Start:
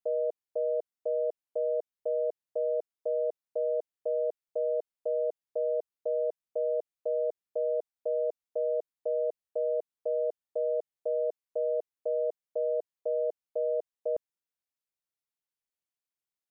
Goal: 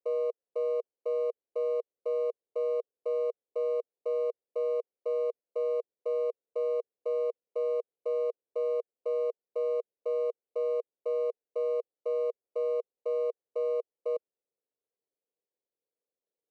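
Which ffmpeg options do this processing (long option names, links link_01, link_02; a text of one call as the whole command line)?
ffmpeg -i in.wav -af "acrusher=samples=26:mix=1:aa=0.000001,bandpass=frequency=470:width_type=q:width=4.3:csg=0,volume=3.5dB" out.wav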